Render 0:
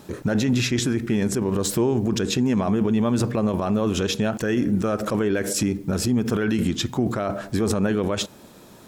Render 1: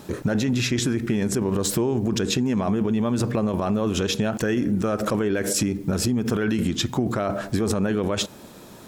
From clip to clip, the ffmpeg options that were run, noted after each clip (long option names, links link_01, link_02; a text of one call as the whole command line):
ffmpeg -i in.wav -af "acompressor=threshold=-22dB:ratio=6,volume=3dB" out.wav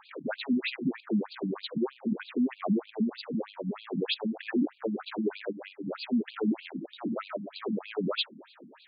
ffmpeg -i in.wav -af "asoftclip=type=hard:threshold=-19.5dB,afftfilt=real='re*between(b*sr/1024,200*pow(3500/200,0.5+0.5*sin(2*PI*3.2*pts/sr))/1.41,200*pow(3500/200,0.5+0.5*sin(2*PI*3.2*pts/sr))*1.41)':imag='im*between(b*sr/1024,200*pow(3500/200,0.5+0.5*sin(2*PI*3.2*pts/sr))/1.41,200*pow(3500/200,0.5+0.5*sin(2*PI*3.2*pts/sr))*1.41)':win_size=1024:overlap=0.75" out.wav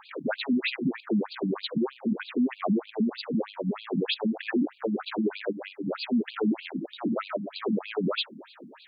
ffmpeg -i in.wav -af "alimiter=limit=-23dB:level=0:latency=1:release=77,volume=4.5dB" out.wav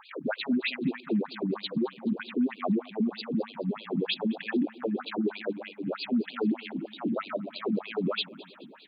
ffmpeg -i in.wav -af "aecho=1:1:213|426|639|852:0.0794|0.0437|0.024|0.0132,volume=-1.5dB" out.wav